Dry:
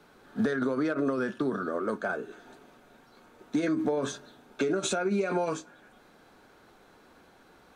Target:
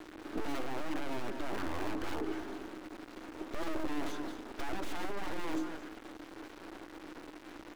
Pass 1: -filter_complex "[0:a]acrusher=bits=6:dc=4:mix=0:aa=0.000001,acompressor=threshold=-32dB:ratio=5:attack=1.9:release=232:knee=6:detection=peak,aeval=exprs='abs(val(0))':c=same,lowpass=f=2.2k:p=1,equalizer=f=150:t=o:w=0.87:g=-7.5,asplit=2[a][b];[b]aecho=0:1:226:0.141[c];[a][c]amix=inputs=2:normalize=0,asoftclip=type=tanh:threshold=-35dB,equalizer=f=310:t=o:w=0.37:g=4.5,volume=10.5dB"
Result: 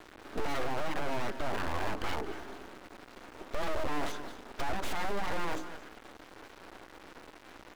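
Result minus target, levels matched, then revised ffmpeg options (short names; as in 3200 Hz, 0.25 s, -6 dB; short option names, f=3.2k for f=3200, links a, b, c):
250 Hz band -7.5 dB; soft clip: distortion -6 dB
-filter_complex "[0:a]acrusher=bits=6:dc=4:mix=0:aa=0.000001,acompressor=threshold=-32dB:ratio=5:attack=1.9:release=232:knee=6:detection=peak,aeval=exprs='abs(val(0))':c=same,lowpass=f=2.2k:p=1,equalizer=f=150:t=o:w=0.87:g=-7.5,asplit=2[a][b];[b]aecho=0:1:226:0.141[c];[a][c]amix=inputs=2:normalize=0,asoftclip=type=tanh:threshold=-41.5dB,equalizer=f=310:t=o:w=0.37:g=16,volume=10.5dB"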